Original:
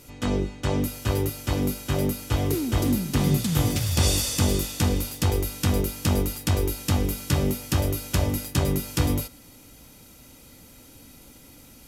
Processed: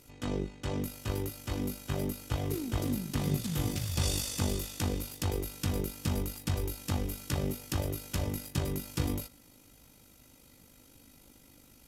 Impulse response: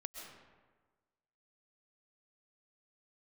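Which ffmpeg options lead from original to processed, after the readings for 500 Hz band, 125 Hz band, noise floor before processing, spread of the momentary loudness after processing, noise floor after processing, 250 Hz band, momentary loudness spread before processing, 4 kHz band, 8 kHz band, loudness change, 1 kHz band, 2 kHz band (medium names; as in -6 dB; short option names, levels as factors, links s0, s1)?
-9.0 dB, -9.0 dB, -50 dBFS, 4 LU, -59 dBFS, -9.0 dB, 4 LU, -9.0 dB, -9.0 dB, -9.0 dB, -9.0 dB, -9.0 dB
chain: -af "tremolo=f=50:d=0.571,volume=0.473"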